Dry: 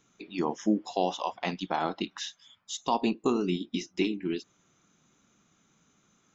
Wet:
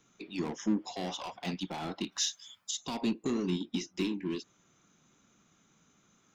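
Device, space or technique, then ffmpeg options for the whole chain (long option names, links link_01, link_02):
one-band saturation: -filter_complex "[0:a]asettb=1/sr,asplit=3[link_01][link_02][link_03];[link_01]atrim=end=2.124[link_04];[link_02]atrim=start=2.12:end=2.71,asetpts=PTS-STARTPTS,afade=type=in:duration=0.004:curve=qsin,afade=type=out:start_time=0.586:duration=0.004:curve=qsin,bass=frequency=250:gain=-3,treble=frequency=4000:gain=12[link_05];[link_03]atrim=start=2.706[link_06];[link_04][link_05]acrossfade=duration=0.004:curve1=hsin:curve2=qsin[link_07];[link_07][link_06]acrossfade=duration=0.004:curve1=qsin:curve2=hsin,acrossover=split=280|3400[link_08][link_09][link_10];[link_09]asoftclip=type=tanh:threshold=-38dB[link_11];[link_08][link_11][link_10]amix=inputs=3:normalize=0"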